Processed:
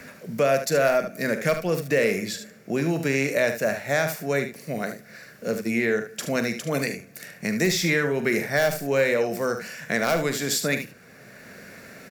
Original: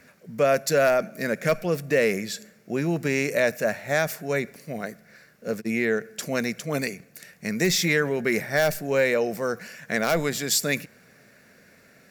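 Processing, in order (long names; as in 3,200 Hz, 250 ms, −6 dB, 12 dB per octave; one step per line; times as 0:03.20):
ambience of single reflections 43 ms −11.5 dB, 74 ms −10 dB
multiband upward and downward compressor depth 40%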